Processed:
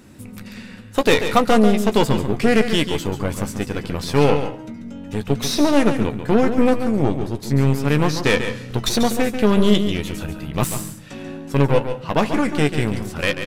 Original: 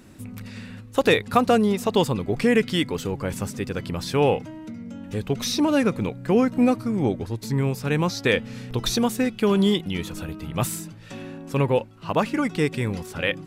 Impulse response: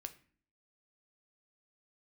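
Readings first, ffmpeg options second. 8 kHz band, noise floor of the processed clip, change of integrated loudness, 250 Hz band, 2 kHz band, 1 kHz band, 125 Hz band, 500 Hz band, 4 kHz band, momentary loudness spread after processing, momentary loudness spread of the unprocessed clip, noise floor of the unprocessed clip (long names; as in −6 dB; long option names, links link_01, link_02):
+4.0 dB, −38 dBFS, +4.0 dB, +4.0 dB, +4.0 dB, +4.0 dB, +5.0 dB, +3.5 dB, +4.0 dB, 13 LU, 17 LU, −42 dBFS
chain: -filter_complex "[0:a]aeval=exprs='0.596*(cos(1*acos(clip(val(0)/0.596,-1,1)))-cos(1*PI/2))+0.0596*(cos(8*acos(clip(val(0)/0.596,-1,1)))-cos(8*PI/2))':channel_layout=same,asplit=2[link_01][link_02];[link_02]adelay=14,volume=-10dB[link_03];[link_01][link_03]amix=inputs=2:normalize=0,asplit=2[link_04][link_05];[1:a]atrim=start_sample=2205,asetrate=30429,aresample=44100,adelay=140[link_06];[link_05][link_06]afir=irnorm=-1:irlink=0,volume=-6dB[link_07];[link_04][link_07]amix=inputs=2:normalize=0,volume=2dB"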